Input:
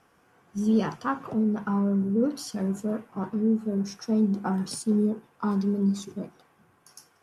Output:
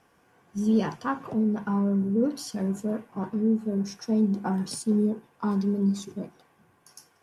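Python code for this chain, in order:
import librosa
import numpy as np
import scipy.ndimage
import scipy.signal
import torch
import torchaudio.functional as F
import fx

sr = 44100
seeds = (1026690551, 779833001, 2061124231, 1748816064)

y = fx.notch(x, sr, hz=1300.0, q=8.9)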